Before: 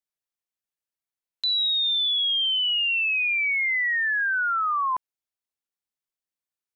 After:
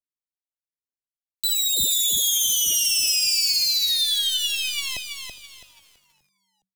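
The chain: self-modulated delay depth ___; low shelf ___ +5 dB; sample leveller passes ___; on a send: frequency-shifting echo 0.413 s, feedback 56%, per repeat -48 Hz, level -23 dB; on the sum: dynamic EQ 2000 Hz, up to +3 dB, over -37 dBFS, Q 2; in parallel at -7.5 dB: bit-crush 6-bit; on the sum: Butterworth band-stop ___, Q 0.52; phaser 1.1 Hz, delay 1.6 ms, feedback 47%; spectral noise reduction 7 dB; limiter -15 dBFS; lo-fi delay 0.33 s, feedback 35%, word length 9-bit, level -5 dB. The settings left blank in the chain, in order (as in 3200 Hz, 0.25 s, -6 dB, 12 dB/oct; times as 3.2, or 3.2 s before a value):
0.14 ms, 180 Hz, 3, 1300 Hz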